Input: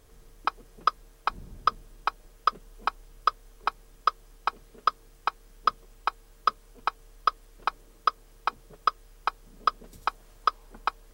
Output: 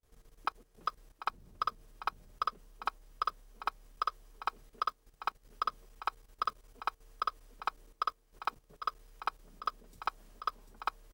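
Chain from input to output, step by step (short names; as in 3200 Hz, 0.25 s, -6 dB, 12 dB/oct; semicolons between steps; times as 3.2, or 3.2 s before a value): block floating point 7-bit; gate with hold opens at -48 dBFS; on a send: echo 0.743 s -6.5 dB; on the sum: level quantiser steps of 13 dB; gain -4.5 dB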